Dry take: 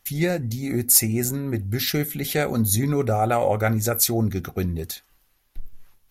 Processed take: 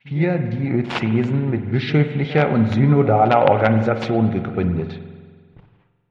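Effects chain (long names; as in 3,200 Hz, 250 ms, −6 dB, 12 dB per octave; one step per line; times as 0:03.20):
mu-law and A-law mismatch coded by A
noise gate with hold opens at −35 dBFS
low-pass that shuts in the quiet parts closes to 2,100 Hz, open at −19.5 dBFS
automatic gain control gain up to 4 dB
wrap-around overflow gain 6.5 dB
loudspeaker in its box 120–2,900 Hz, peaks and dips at 140 Hz +8 dB, 880 Hz +5 dB, 1,800 Hz −3 dB
echo ahead of the sound 58 ms −17 dB
spring reverb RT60 1.7 s, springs 45 ms, chirp 75 ms, DRR 8.5 dB
level +2.5 dB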